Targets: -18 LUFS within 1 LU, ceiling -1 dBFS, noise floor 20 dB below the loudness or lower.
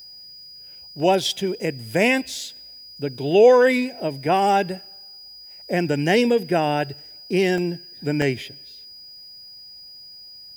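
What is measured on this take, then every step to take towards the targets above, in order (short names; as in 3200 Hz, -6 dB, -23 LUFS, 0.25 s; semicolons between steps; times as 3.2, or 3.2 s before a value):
dropouts 3; longest dropout 1.3 ms; steady tone 4900 Hz; tone level -40 dBFS; loudness -21.0 LUFS; peak -4.5 dBFS; loudness target -18.0 LUFS
-> interpolate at 1/7.58/8.22, 1.3 ms; notch 4900 Hz, Q 30; gain +3 dB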